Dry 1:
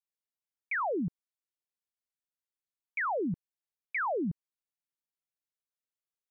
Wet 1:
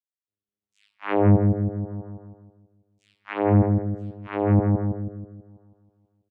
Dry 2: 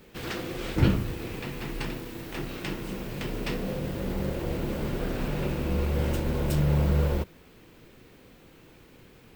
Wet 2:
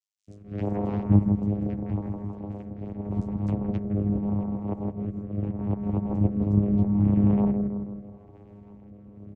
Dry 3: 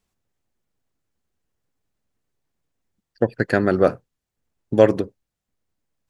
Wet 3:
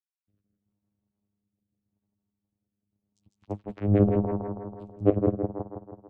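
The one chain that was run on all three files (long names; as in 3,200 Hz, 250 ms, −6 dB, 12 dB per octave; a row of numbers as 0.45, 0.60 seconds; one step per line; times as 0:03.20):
spectral envelope exaggerated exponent 1.5
reverb reduction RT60 0.8 s
flat-topped bell 2,700 Hz −13 dB 1 octave
volume swells 224 ms
channel vocoder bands 4, saw 102 Hz
multiband delay without the direct sound highs, lows 270 ms, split 5,100 Hz
flanger 1.1 Hz, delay 9 ms, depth 1.8 ms, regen −41%
sample-and-hold tremolo 2.4 Hz
on a send: bucket-brigade delay 162 ms, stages 2,048, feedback 54%, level −4 dB
on the sum: rotating-speaker cabinet horn 0.8 Hz
normalise the peak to −6 dBFS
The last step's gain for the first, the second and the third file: +22.5, +18.5, +13.0 decibels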